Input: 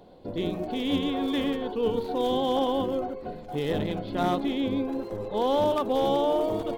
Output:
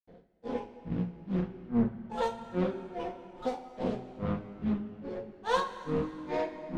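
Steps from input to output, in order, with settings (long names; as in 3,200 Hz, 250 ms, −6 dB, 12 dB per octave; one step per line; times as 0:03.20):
running median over 41 samples
high-frequency loss of the air 98 metres
granular cloud 249 ms, grains 2.4 per second, pitch spread up and down by 12 semitones
coupled-rooms reverb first 0.23 s, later 3.1 s, from −18 dB, DRR 1 dB
highs frequency-modulated by the lows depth 0.41 ms
level −2 dB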